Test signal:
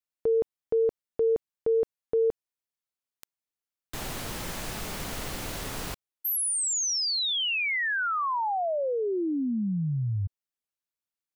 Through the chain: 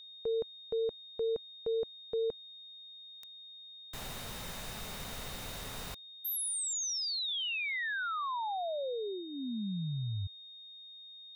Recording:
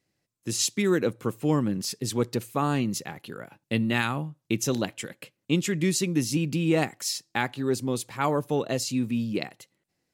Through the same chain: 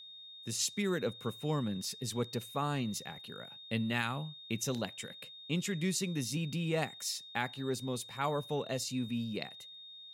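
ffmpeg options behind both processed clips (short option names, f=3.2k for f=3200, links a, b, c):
-af "equalizer=f=320:w=4.4:g=-9.5,aeval=exprs='val(0)+0.00891*sin(2*PI*3700*n/s)':c=same,volume=-7.5dB"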